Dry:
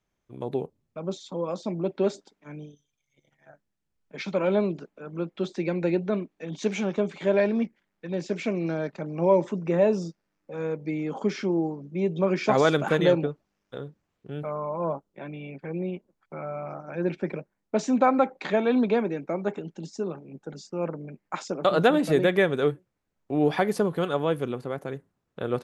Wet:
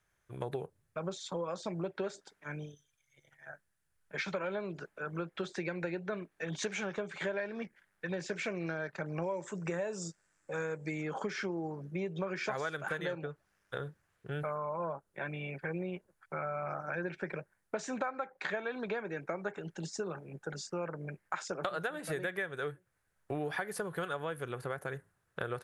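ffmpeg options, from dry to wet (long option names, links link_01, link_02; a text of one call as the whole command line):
ffmpeg -i in.wav -filter_complex "[0:a]asettb=1/sr,asplit=3[link_01][link_02][link_03];[link_01]atrim=end=9.224[link_04];[link_02]atrim=start=9.22:end=11.02,asetpts=PTS-STARTPTS,afade=type=in:duration=0.004:curve=qsin,afade=type=out:start_time=1.796:duration=0.004:curve=qsin,lowpass=frequency=7600:width_type=q:width=6.4[link_05];[link_03]atrim=start=11.016[link_06];[link_04][link_05]acrossfade=duration=0.004:curve1=hsin:curve2=qsin[link_07];[link_07][link_06]acrossfade=duration=0.004:curve1=qsin:curve2=hsin,equalizer=frequency=100:width_type=o:width=0.67:gain=4,equalizer=frequency=250:width_type=o:width=0.67:gain=-11,equalizer=frequency=1600:width_type=o:width=0.67:gain=11,equalizer=frequency=10000:width_type=o:width=0.67:gain=12,acompressor=threshold=-33dB:ratio=10" out.wav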